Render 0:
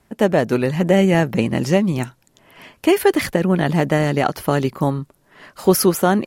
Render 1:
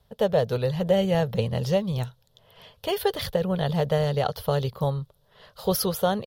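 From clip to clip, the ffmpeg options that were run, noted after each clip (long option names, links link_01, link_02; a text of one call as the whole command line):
ffmpeg -i in.wav -af "firequalizer=gain_entry='entry(110,0);entry(310,-25);entry(460,-1);entry(710,-7);entry(1300,-10);entry(2300,-16);entry(3400,2);entry(7300,-15);entry(15000,-2)':delay=0.05:min_phase=1" out.wav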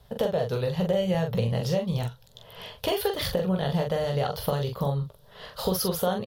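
ffmpeg -i in.wav -filter_complex "[0:a]acompressor=threshold=-33dB:ratio=4,asplit=2[link_01][link_02];[link_02]aecho=0:1:17|43:0.316|0.562[link_03];[link_01][link_03]amix=inputs=2:normalize=0,volume=7dB" out.wav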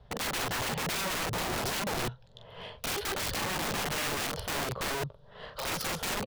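ffmpeg -i in.wav -af "adynamicsmooth=sensitivity=3:basefreq=3200,aeval=exprs='(mod(23.7*val(0)+1,2)-1)/23.7':channel_layout=same" out.wav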